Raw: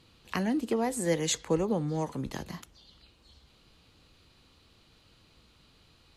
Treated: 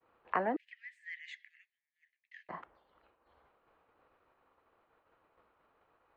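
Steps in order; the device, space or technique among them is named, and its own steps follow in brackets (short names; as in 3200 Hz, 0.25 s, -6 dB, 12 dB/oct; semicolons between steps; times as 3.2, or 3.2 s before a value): 0.56–2.49 steep high-pass 1800 Hz 96 dB/oct; hearing-loss simulation (LPF 1600 Hz 12 dB/oct; expander -57 dBFS); three-band isolator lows -24 dB, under 450 Hz, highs -19 dB, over 2100 Hz; gain +6.5 dB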